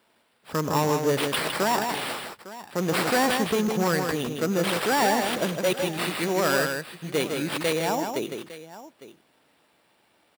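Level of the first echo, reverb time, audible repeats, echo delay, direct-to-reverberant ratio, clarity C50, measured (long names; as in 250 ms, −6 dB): −19.5 dB, no reverb audible, 3, 99 ms, no reverb audible, no reverb audible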